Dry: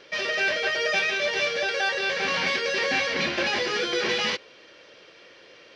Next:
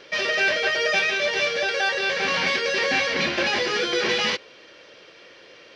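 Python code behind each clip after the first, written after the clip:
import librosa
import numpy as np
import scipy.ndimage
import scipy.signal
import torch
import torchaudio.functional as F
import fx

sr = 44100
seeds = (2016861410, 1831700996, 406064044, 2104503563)

y = fx.rider(x, sr, range_db=10, speed_s=2.0)
y = y * librosa.db_to_amplitude(2.5)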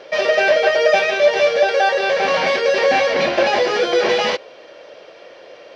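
y = fx.peak_eq(x, sr, hz=650.0, db=15.0, octaves=1.2)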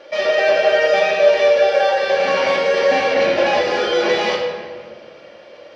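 y = fx.room_shoebox(x, sr, seeds[0], volume_m3=2400.0, walls='mixed', distance_m=2.4)
y = y * librosa.db_to_amplitude(-4.5)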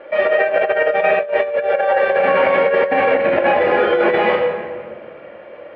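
y = scipy.signal.sosfilt(scipy.signal.butter(4, 2300.0, 'lowpass', fs=sr, output='sos'), x)
y = fx.over_compress(y, sr, threshold_db=-17.0, ratio=-0.5)
y = y * librosa.db_to_amplitude(2.5)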